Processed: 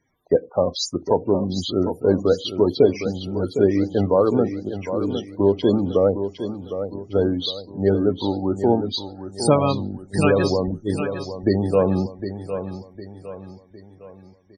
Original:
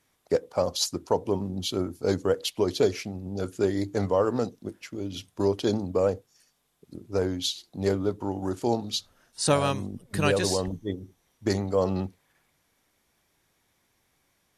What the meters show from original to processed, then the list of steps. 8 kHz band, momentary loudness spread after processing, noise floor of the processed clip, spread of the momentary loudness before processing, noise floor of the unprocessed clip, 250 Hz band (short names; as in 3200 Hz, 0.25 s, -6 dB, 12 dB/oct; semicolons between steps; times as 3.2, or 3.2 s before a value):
-3.0 dB, 11 LU, -50 dBFS, 11 LU, -71 dBFS, +8.5 dB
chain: loudest bins only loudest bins 32; feedback echo 0.758 s, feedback 45%, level -9 dB; dynamic EQ 260 Hz, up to +4 dB, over -34 dBFS, Q 0.84; gain +4.5 dB